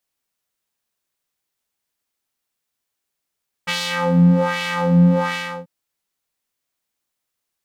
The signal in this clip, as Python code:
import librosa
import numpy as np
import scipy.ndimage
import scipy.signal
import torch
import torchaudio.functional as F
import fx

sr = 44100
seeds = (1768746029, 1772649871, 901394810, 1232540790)

y = fx.sub_patch_wobble(sr, seeds[0], note=53, wave='square', wave2='saw', interval_st=7, level2_db=-10.0, sub_db=-19, noise_db=-13.5, kind='bandpass', cutoff_hz=510.0, q=1.5, env_oct=2.0, env_decay_s=0.27, env_sustain_pct=25, attack_ms=16.0, decay_s=0.29, sustain_db=-3.0, release_s=0.34, note_s=1.65, lfo_hz=1.3, wobble_oct=1.9)